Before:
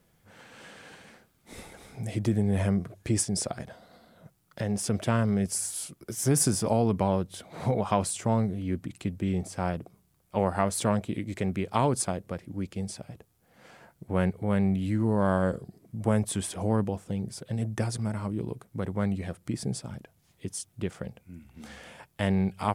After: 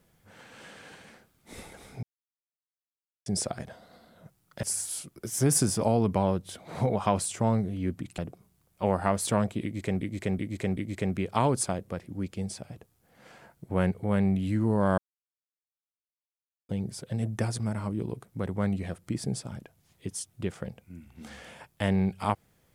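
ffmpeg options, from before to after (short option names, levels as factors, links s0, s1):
-filter_complex "[0:a]asplit=10[s0][s1][s2][s3][s4][s5][s6][s7][s8][s9];[s0]atrim=end=2.03,asetpts=PTS-STARTPTS,afade=t=out:st=2.026:d=0.004:c=hsin[s10];[s1]atrim=start=2.03:end=3.26,asetpts=PTS-STARTPTS,volume=0[s11];[s2]atrim=start=3.26:end=4.632,asetpts=PTS-STARTPTS,afade=t=in:d=0.004:c=hsin[s12];[s3]atrim=start=5.478:end=9.032[s13];[s4]atrim=start=9.708:end=11.542[s14];[s5]atrim=start=11.158:end=11.542[s15];[s6]atrim=start=11.158:end=11.542[s16];[s7]atrim=start=11.158:end=15.37,asetpts=PTS-STARTPTS,afade=t=out:st=4.208:d=0.004:c=hsin[s17];[s8]atrim=start=15.37:end=17.08,asetpts=PTS-STARTPTS,volume=0[s18];[s9]atrim=start=17.08,asetpts=PTS-STARTPTS,afade=t=in:d=0.004:c=hsin[s19];[s10][s11][s12]concat=n=3:v=0:a=1[s20];[s20][s13]acrossfade=d=0.004:c1=hsin:c2=hsin[s21];[s21][s14]acrossfade=d=0.004:c1=hsin:c2=hsin[s22];[s22][s15]acrossfade=d=0.004:c1=hsin:c2=hsin[s23];[s23][s16]acrossfade=d=0.004:c1=hsin:c2=hsin[s24];[s17][s18][s19]concat=n=3:v=0:a=1[s25];[s24][s25]acrossfade=d=0.004:c1=hsin:c2=hsin"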